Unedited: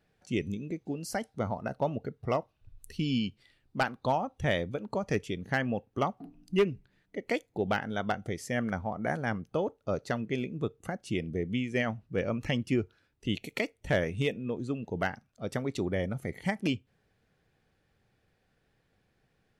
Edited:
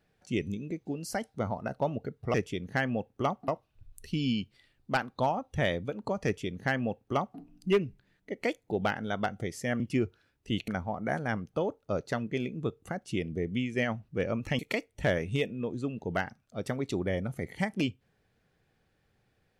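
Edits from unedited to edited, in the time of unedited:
0:05.11–0:06.25: duplicate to 0:02.34
0:12.57–0:13.45: move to 0:08.66

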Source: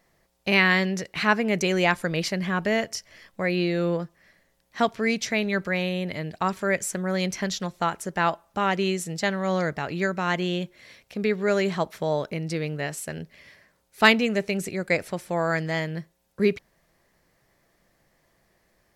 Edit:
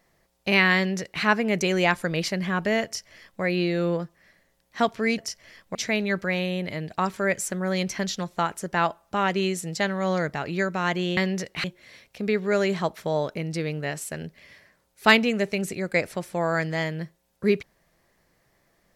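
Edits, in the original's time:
0:00.76–0:01.23: duplicate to 0:10.60
0:02.85–0:03.42: duplicate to 0:05.18

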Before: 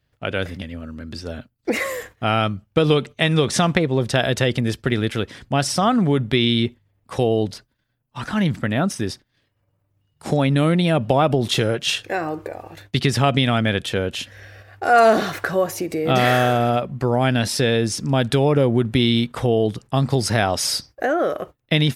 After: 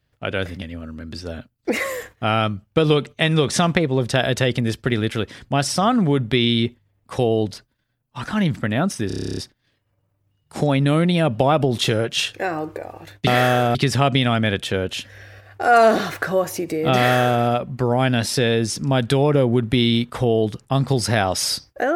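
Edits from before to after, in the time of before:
0:09.07: stutter 0.03 s, 11 plays
0:16.17–0:16.65: duplicate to 0:12.97

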